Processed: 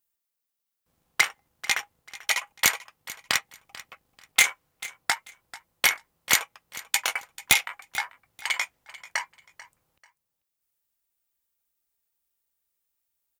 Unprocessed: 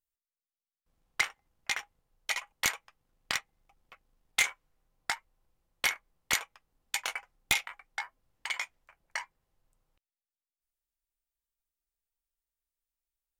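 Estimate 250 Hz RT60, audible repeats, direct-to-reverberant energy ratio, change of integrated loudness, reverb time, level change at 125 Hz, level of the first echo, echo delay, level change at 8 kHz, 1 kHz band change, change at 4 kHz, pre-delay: none, 2, none, +7.5 dB, none, +6.0 dB, -18.0 dB, 0.44 s, +9.0 dB, +7.0 dB, +7.5 dB, none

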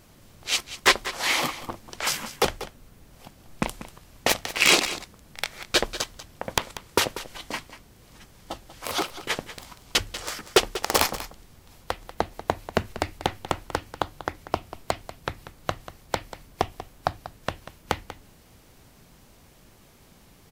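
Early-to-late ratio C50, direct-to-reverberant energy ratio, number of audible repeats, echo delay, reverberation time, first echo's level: none, none, 1, 0.19 s, none, -14.0 dB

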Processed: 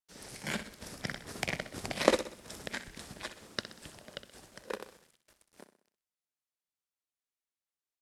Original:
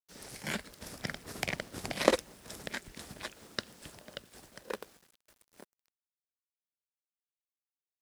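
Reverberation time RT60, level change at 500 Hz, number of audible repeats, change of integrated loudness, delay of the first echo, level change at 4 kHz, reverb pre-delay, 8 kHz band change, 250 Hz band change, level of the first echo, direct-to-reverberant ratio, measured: none, +0.5 dB, 4, +0.5 dB, 63 ms, +0.5 dB, none, 0.0 dB, +0.5 dB, -12.0 dB, none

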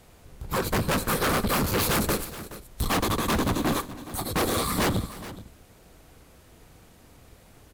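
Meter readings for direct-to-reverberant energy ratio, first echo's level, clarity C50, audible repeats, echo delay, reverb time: none, -20.0 dB, none, 2, 0.301 s, none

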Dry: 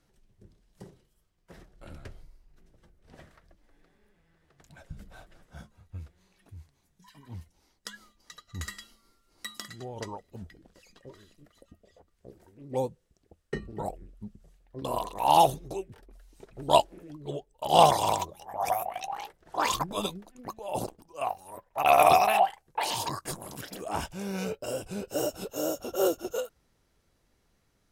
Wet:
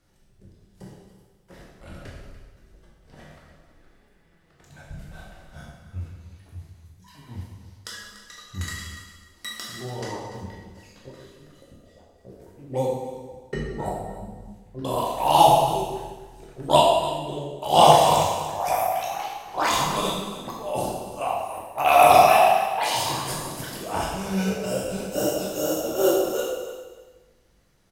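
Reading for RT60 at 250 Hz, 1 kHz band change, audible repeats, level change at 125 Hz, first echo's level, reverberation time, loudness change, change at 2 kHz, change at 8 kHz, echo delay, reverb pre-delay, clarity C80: 1.3 s, +6.5 dB, 1, +7.5 dB, -14.0 dB, 1.3 s, +6.5 dB, +6.5 dB, +6.5 dB, 0.29 s, 6 ms, 2.5 dB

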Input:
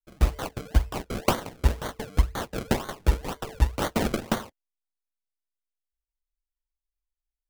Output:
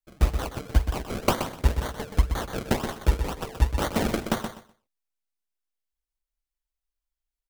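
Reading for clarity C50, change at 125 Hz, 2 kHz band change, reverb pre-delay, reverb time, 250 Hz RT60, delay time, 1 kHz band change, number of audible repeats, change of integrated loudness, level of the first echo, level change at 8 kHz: none, +0.5 dB, +0.5 dB, none, none, none, 0.125 s, +0.5 dB, 2, +0.5 dB, -8.0 dB, +0.5 dB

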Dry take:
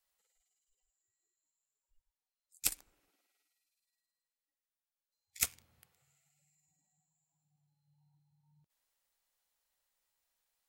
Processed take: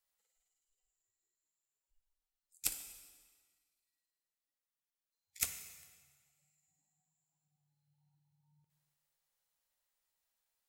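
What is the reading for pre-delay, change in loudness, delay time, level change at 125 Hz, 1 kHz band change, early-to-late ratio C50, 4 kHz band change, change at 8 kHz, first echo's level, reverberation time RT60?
18 ms, -3.5 dB, none, -3.0 dB, -3.5 dB, 8.5 dB, -3.0 dB, -2.5 dB, none, 1.5 s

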